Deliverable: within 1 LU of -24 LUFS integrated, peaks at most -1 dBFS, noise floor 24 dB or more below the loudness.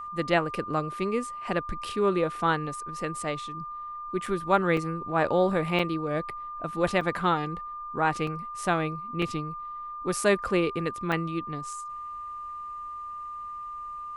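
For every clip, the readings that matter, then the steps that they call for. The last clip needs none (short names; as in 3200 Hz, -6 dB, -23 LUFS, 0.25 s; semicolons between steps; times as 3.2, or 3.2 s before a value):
dropouts 7; longest dropout 3.5 ms; steady tone 1200 Hz; tone level -35 dBFS; loudness -29.0 LUFS; peak -9.0 dBFS; loudness target -24.0 LUFS
-> interpolate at 4.26/4.77/5.79/7.01/8.27/9.22/11.12, 3.5 ms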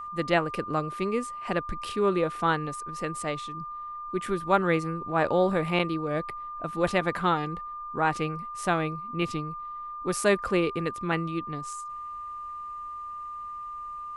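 dropouts 0; steady tone 1200 Hz; tone level -35 dBFS
-> notch 1200 Hz, Q 30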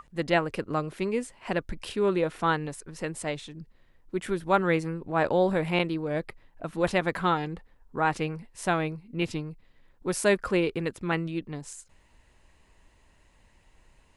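steady tone none; loudness -28.5 LUFS; peak -9.0 dBFS; loudness target -24.0 LUFS
-> gain +4.5 dB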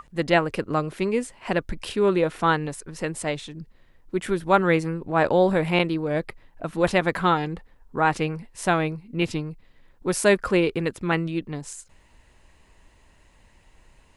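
loudness -24.0 LUFS; peak -4.5 dBFS; noise floor -57 dBFS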